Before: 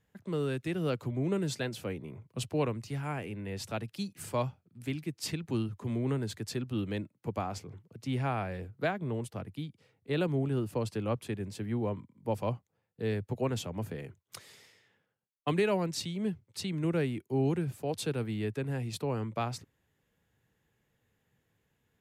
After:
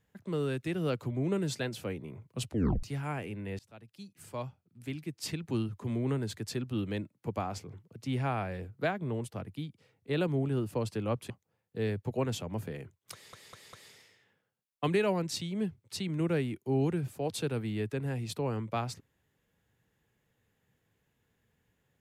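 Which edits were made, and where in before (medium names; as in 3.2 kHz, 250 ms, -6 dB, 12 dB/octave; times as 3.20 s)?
2.47 s: tape stop 0.36 s
3.59–5.56 s: fade in, from -23.5 dB
11.30–12.54 s: delete
14.37 s: stutter 0.20 s, 4 plays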